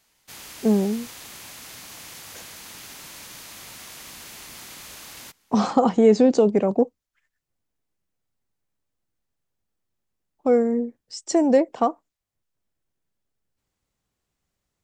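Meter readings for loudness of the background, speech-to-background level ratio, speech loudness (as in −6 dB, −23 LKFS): −39.0 LKFS, 18.5 dB, −20.5 LKFS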